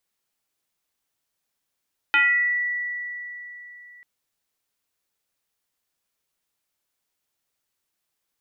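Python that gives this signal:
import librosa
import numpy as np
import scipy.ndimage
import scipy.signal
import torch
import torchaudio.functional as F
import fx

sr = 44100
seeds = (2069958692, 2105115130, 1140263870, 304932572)

y = fx.fm2(sr, length_s=1.89, level_db=-14, carrier_hz=1950.0, ratio=0.28, index=1.6, index_s=0.72, decay_s=3.58, shape='exponential')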